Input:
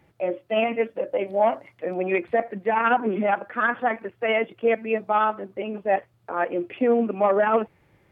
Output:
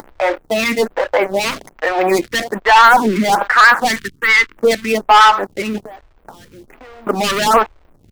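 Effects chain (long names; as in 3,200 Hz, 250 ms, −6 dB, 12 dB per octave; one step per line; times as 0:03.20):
flat-topped bell 1,300 Hz +13.5 dB
upward compression, threshold −31 dBFS
leveller curve on the samples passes 5
0:05.82–0:07.07: downward compressor 12 to 1, threshold −27 dBFS, peak gain reduction 25 dB
background noise pink −36 dBFS
slack as between gear wheels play −24 dBFS
0:03.99–0:04.57: Butterworth band-reject 670 Hz, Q 0.71
phaser with staggered stages 1.2 Hz
level −5 dB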